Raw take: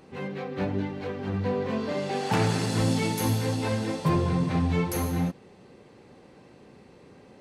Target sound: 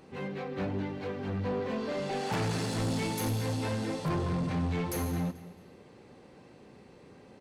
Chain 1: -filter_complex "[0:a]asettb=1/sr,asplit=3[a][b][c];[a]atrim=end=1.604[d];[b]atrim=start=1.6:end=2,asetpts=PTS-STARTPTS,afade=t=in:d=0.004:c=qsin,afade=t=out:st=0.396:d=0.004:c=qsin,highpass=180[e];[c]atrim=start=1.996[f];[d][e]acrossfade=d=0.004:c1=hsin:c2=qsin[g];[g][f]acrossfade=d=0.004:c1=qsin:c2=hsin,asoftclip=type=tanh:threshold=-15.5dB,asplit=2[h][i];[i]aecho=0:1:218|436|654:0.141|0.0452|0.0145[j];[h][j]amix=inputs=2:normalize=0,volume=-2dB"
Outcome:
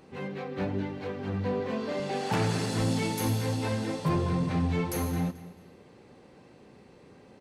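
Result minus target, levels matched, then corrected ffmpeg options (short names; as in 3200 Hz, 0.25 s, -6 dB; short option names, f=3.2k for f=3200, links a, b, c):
soft clip: distortion -12 dB
-filter_complex "[0:a]asettb=1/sr,asplit=3[a][b][c];[a]atrim=end=1.604[d];[b]atrim=start=1.6:end=2,asetpts=PTS-STARTPTS,afade=t=in:d=0.004:c=qsin,afade=t=out:st=0.396:d=0.004:c=qsin,highpass=180[e];[c]atrim=start=1.996[f];[d][e]acrossfade=d=0.004:c1=hsin:c2=qsin[g];[g][f]acrossfade=d=0.004:c1=qsin:c2=hsin,asoftclip=type=tanh:threshold=-24.5dB,asplit=2[h][i];[i]aecho=0:1:218|436|654:0.141|0.0452|0.0145[j];[h][j]amix=inputs=2:normalize=0,volume=-2dB"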